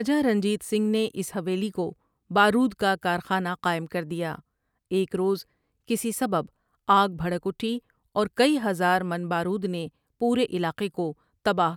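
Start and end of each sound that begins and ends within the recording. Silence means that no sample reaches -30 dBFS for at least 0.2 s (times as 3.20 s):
2.31–4.35 s
4.92–5.40 s
5.90–6.42 s
6.89–7.78 s
8.16–9.87 s
10.22–11.12 s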